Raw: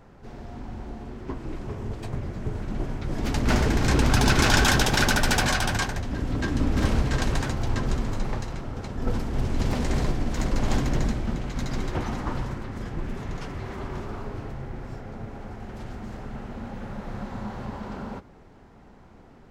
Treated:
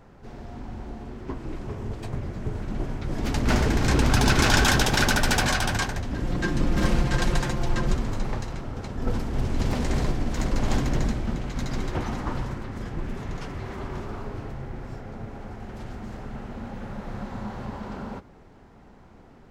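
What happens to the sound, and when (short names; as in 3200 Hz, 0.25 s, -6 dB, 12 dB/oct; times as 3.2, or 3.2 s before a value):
6.22–7.94 comb 5.7 ms, depth 66%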